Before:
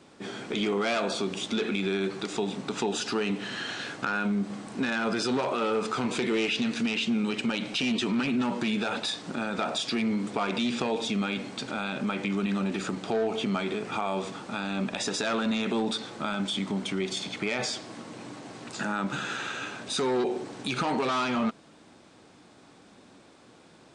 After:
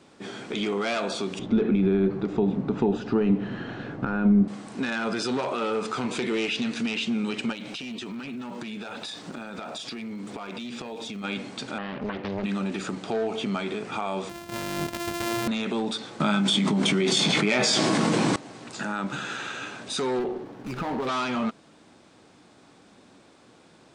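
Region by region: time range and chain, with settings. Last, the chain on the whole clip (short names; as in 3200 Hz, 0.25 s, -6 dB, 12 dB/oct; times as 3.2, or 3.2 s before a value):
1.39–4.48 LPF 2100 Hz 6 dB/oct + tilt -4 dB/oct
7.52–11.23 compressor 10:1, threshold -32 dBFS + crackle 380/s -54 dBFS
11.78–12.44 air absorption 420 m + Doppler distortion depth 0.93 ms
14.29–15.48 sample sorter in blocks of 128 samples + notch 1200 Hz, Q 23
16.2–18.36 resonant low shelf 110 Hz -10 dB, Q 3 + doubler 19 ms -6.5 dB + fast leveller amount 100%
20.19–21.07 tape spacing loss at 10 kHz 21 dB + running maximum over 9 samples
whole clip: dry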